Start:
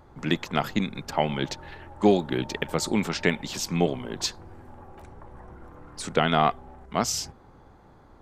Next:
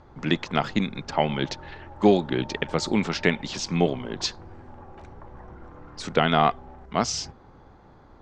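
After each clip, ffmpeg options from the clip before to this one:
-af "lowpass=f=6.3k:w=0.5412,lowpass=f=6.3k:w=1.3066,volume=1.5dB"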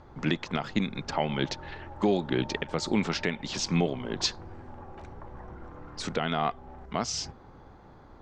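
-af "alimiter=limit=-14dB:level=0:latency=1:release=307"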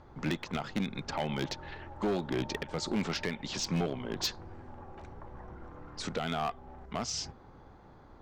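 -af "asoftclip=type=hard:threshold=-22.5dB,volume=-3dB"

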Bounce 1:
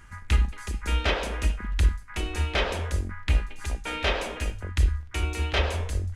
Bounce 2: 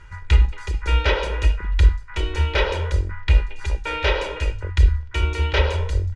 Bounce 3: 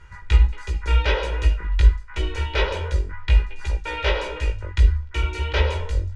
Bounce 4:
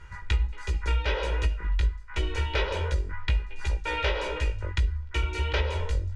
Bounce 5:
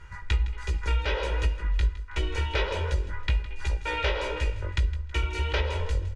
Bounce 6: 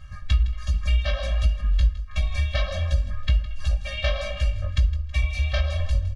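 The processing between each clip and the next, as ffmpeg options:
-af "lowpass=5.1k,aecho=1:1:2.1:0.84,volume=2.5dB"
-af "flanger=delay=15.5:depth=3:speed=1.4,volume=1dB"
-af "acompressor=threshold=-23dB:ratio=4"
-af "aecho=1:1:161|322|483|644:0.158|0.0697|0.0307|0.0135"
-af "afftfilt=real='re*eq(mod(floor(b*sr/1024/260),2),0)':imag='im*eq(mod(floor(b*sr/1024/260),2),0)':win_size=1024:overlap=0.75,volume=5dB"

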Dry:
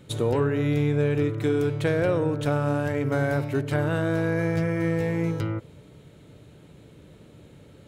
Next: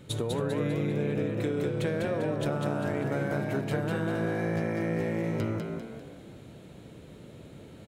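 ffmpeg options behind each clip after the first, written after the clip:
-filter_complex "[0:a]acompressor=threshold=-28dB:ratio=6,asplit=2[a][b];[b]asplit=6[c][d][e][f][g][h];[c]adelay=198,afreqshift=59,volume=-4dB[i];[d]adelay=396,afreqshift=118,volume=-11.1dB[j];[e]adelay=594,afreqshift=177,volume=-18.3dB[k];[f]adelay=792,afreqshift=236,volume=-25.4dB[l];[g]adelay=990,afreqshift=295,volume=-32.5dB[m];[h]adelay=1188,afreqshift=354,volume=-39.7dB[n];[i][j][k][l][m][n]amix=inputs=6:normalize=0[o];[a][o]amix=inputs=2:normalize=0"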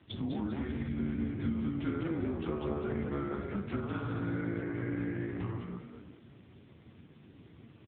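-filter_complex "[0:a]afreqshift=-210,asplit=2[a][b];[b]adelay=35,volume=-11.5dB[c];[a][c]amix=inputs=2:normalize=0,volume=-2dB" -ar 8000 -c:a libopencore_amrnb -b:a 5900

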